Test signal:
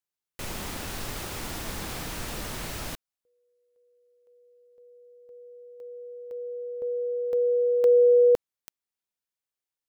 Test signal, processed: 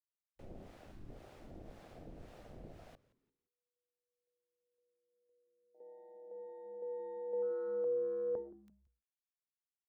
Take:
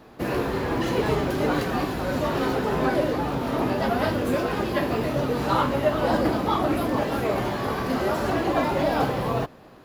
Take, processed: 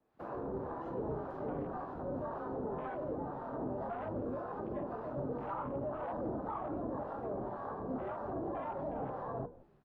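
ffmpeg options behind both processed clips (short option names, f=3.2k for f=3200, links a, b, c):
-filter_complex "[0:a]lowpass=f=1.5k:p=1,bandreject=f=60:t=h:w=6,bandreject=f=120:t=h:w=6,bandreject=f=180:t=h:w=6,bandreject=f=240:t=h:w=6,bandreject=f=300:t=h:w=6,bandreject=f=360:t=h:w=6,bandreject=f=420:t=h:w=6,bandreject=f=480:t=h:w=6,afwtdn=0.0224,lowshelf=f=490:g=-10.5,acrossover=split=170|1100[a][b][c];[b]alimiter=level_in=2.5dB:limit=-24dB:level=0:latency=1:release=25,volume=-2.5dB[d];[c]acompressor=threshold=-54dB:ratio=6:attack=15:release=212:detection=peak[e];[a][d][e]amix=inputs=3:normalize=0,acrossover=split=650[f][g];[f]aeval=exprs='val(0)*(1-0.7/2+0.7/2*cos(2*PI*1.9*n/s))':c=same[h];[g]aeval=exprs='val(0)*(1-0.7/2-0.7/2*cos(2*PI*1.9*n/s))':c=same[i];[h][i]amix=inputs=2:normalize=0,asplit=2[j][k];[k]asplit=3[l][m][n];[l]adelay=172,afreqshift=-140,volume=-19dB[o];[m]adelay=344,afreqshift=-280,volume=-28.6dB[p];[n]adelay=516,afreqshift=-420,volume=-38.3dB[q];[o][p][q]amix=inputs=3:normalize=0[r];[j][r]amix=inputs=2:normalize=0,volume=-2.5dB"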